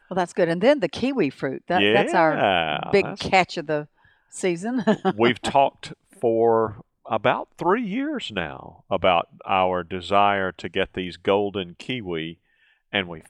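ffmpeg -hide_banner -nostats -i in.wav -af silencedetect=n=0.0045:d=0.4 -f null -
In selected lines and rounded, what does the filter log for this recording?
silence_start: 12.34
silence_end: 12.92 | silence_duration: 0.59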